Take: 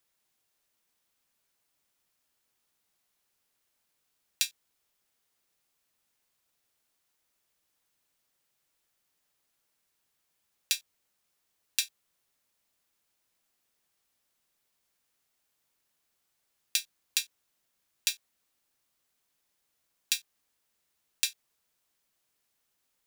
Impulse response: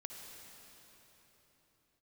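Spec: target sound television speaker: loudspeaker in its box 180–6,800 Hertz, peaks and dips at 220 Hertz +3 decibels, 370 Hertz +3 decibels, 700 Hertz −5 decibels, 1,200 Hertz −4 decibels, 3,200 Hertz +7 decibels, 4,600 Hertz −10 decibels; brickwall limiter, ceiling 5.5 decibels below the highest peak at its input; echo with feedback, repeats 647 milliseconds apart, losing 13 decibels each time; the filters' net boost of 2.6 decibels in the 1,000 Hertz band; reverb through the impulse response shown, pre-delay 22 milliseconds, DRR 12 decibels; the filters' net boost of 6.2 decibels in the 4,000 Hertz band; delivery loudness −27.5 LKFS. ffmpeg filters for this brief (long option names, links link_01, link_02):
-filter_complex "[0:a]equalizer=frequency=1000:width_type=o:gain=6,equalizer=frequency=4000:width_type=o:gain=7.5,alimiter=limit=-8dB:level=0:latency=1,aecho=1:1:647|1294|1941:0.224|0.0493|0.0108,asplit=2[link_01][link_02];[1:a]atrim=start_sample=2205,adelay=22[link_03];[link_02][link_03]afir=irnorm=-1:irlink=0,volume=-9dB[link_04];[link_01][link_04]amix=inputs=2:normalize=0,highpass=frequency=180:width=0.5412,highpass=frequency=180:width=1.3066,equalizer=frequency=220:width_type=q:width=4:gain=3,equalizer=frequency=370:width_type=q:width=4:gain=3,equalizer=frequency=700:width_type=q:width=4:gain=-5,equalizer=frequency=1200:width_type=q:width=4:gain=-4,equalizer=frequency=3200:width_type=q:width=4:gain=7,equalizer=frequency=4600:width_type=q:width=4:gain=-10,lowpass=frequency=6800:width=0.5412,lowpass=frequency=6800:width=1.3066,volume=8.5dB"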